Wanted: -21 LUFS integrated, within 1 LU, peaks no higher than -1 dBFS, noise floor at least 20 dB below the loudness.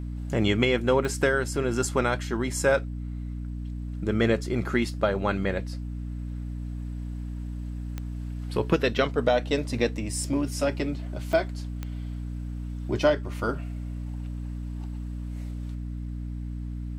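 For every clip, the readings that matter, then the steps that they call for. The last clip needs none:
clicks found 4; hum 60 Hz; highest harmonic 300 Hz; hum level -31 dBFS; loudness -28.5 LUFS; peak level -8.5 dBFS; loudness target -21.0 LUFS
-> de-click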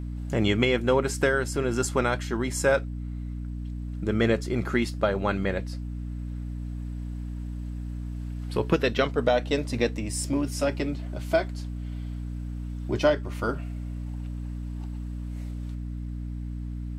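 clicks found 0; hum 60 Hz; highest harmonic 300 Hz; hum level -31 dBFS
-> de-hum 60 Hz, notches 5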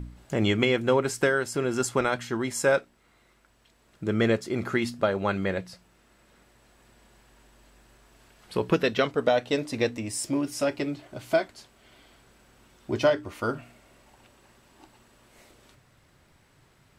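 hum not found; loudness -27.0 LUFS; peak level -8.0 dBFS; loudness target -21.0 LUFS
-> trim +6 dB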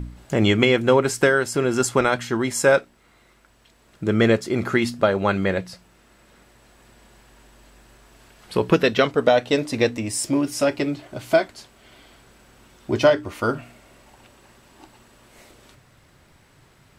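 loudness -21.0 LUFS; peak level -2.0 dBFS; noise floor -57 dBFS

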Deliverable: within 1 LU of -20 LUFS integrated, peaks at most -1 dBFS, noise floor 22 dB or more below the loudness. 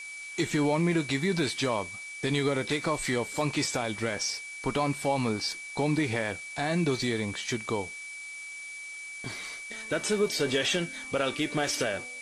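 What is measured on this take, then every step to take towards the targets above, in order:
steady tone 2.3 kHz; tone level -39 dBFS; noise floor -41 dBFS; noise floor target -52 dBFS; loudness -29.5 LUFS; peak level -14.5 dBFS; loudness target -20.0 LUFS
-> band-stop 2.3 kHz, Q 30; noise reduction 11 dB, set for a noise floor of -41 dBFS; trim +9.5 dB

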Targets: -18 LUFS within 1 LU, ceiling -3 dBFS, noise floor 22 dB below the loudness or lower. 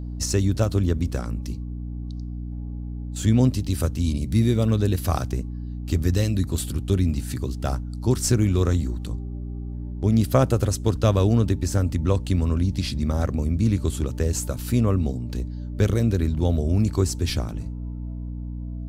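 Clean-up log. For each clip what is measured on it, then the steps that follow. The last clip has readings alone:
hum 60 Hz; highest harmonic 300 Hz; hum level -29 dBFS; loudness -24.0 LUFS; peak level -6.5 dBFS; loudness target -18.0 LUFS
-> hum notches 60/120/180/240/300 Hz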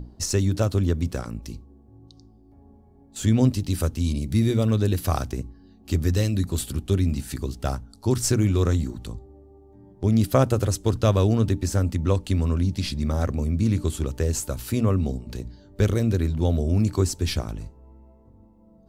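hum not found; loudness -24.0 LUFS; peak level -7.0 dBFS; loudness target -18.0 LUFS
-> trim +6 dB; peak limiter -3 dBFS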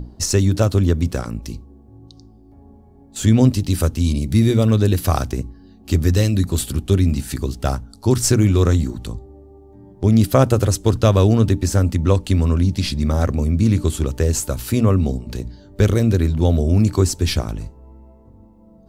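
loudness -18.0 LUFS; peak level -3.0 dBFS; noise floor -47 dBFS

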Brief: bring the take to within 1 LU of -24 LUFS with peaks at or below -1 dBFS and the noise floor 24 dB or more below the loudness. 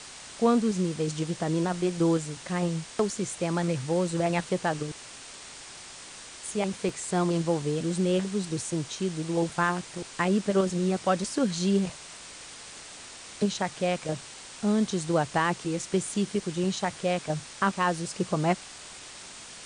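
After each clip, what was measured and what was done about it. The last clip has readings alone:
dropouts 1; longest dropout 1.3 ms; noise floor -45 dBFS; noise floor target -53 dBFS; loudness -28.5 LUFS; peak level -11.0 dBFS; loudness target -24.0 LUFS
-> interpolate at 6.89 s, 1.3 ms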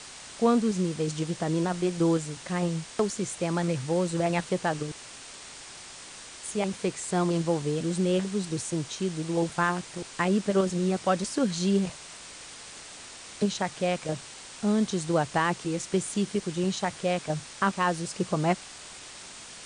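dropouts 0; noise floor -45 dBFS; noise floor target -53 dBFS
-> noise print and reduce 8 dB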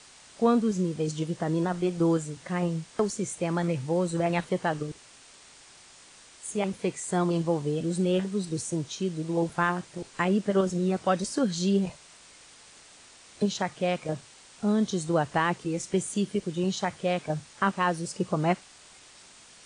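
noise floor -53 dBFS; loudness -28.5 LUFS; peak level -11.5 dBFS; loudness target -24.0 LUFS
-> trim +4.5 dB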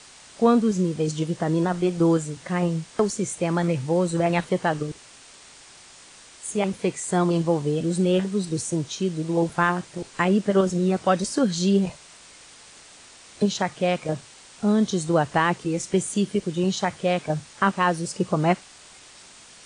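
loudness -24.0 LUFS; peak level -7.0 dBFS; noise floor -48 dBFS

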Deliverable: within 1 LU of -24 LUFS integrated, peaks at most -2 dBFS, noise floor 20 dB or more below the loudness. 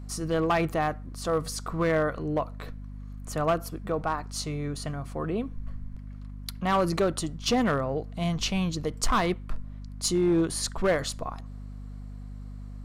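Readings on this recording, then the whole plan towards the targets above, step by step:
clipped samples 0.9%; clipping level -18.0 dBFS; hum 50 Hz; highest harmonic 250 Hz; hum level -37 dBFS; loudness -28.5 LUFS; peak level -18.0 dBFS; loudness target -24.0 LUFS
-> clip repair -18 dBFS; de-hum 50 Hz, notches 5; trim +4.5 dB

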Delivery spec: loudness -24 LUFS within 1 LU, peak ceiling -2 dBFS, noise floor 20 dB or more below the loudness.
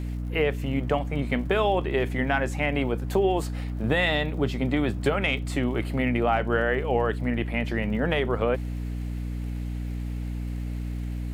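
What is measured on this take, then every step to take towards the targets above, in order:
tick rate 52 per s; hum 60 Hz; highest harmonic 300 Hz; hum level -28 dBFS; loudness -26.5 LUFS; peak level -9.5 dBFS; loudness target -24.0 LUFS
-> de-click; de-hum 60 Hz, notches 5; trim +2.5 dB

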